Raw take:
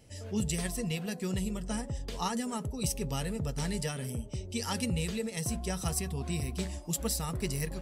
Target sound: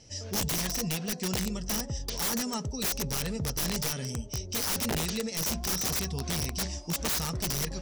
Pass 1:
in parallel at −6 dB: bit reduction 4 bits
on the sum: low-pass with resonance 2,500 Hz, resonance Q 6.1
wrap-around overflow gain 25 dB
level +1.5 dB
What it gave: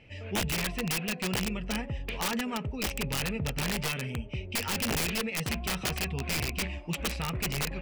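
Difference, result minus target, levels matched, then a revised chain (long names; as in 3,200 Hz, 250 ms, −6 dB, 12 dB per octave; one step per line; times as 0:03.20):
2,000 Hz band +6.5 dB
in parallel at −6 dB: bit reduction 4 bits
on the sum: low-pass with resonance 5,700 Hz, resonance Q 6.1
wrap-around overflow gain 25 dB
level +1.5 dB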